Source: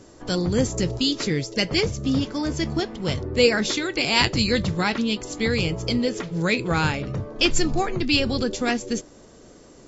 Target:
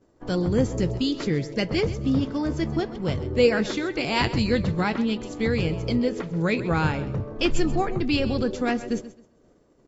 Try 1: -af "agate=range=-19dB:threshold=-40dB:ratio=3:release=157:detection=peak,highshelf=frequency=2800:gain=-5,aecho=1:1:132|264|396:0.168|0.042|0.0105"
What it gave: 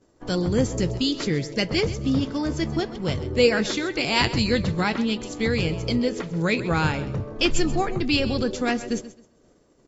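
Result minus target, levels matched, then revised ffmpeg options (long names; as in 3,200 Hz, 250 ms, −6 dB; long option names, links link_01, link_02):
4,000 Hz band +4.0 dB
-af "agate=range=-19dB:threshold=-40dB:ratio=3:release=157:detection=peak,highshelf=frequency=2800:gain=-13,aecho=1:1:132|264|396:0.168|0.042|0.0105"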